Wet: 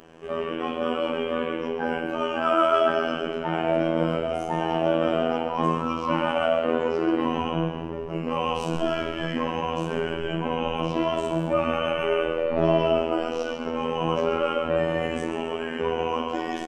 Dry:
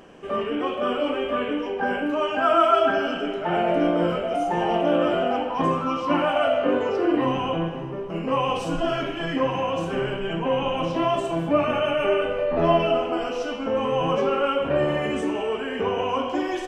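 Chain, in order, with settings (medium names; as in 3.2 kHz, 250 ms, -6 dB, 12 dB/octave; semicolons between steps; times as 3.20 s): frequency-shifting echo 134 ms, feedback 49%, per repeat -42 Hz, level -10 dB; robot voice 81.9 Hz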